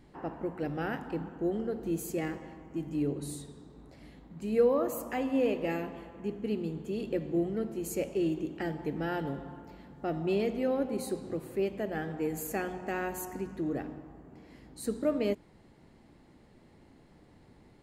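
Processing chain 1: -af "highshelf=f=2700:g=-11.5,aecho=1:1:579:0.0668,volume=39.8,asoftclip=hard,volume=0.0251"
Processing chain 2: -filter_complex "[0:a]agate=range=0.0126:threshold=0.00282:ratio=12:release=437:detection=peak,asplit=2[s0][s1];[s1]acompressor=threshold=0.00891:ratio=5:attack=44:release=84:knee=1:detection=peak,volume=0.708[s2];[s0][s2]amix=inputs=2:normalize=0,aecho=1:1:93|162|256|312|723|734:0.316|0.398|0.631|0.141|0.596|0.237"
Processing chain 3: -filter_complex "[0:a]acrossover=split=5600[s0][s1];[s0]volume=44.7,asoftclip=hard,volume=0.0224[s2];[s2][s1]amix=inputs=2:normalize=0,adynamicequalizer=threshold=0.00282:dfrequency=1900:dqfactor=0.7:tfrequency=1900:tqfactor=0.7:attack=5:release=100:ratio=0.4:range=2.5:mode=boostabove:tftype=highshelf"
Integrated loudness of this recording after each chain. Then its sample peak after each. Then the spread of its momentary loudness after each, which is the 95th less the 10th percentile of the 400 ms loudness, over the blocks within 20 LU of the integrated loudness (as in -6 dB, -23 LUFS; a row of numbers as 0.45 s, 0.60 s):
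-37.5 LUFS, -28.5 LUFS, -37.0 LUFS; -32.0 dBFS, -13.0 dBFS, -22.5 dBFS; 15 LU, 9 LU, 11 LU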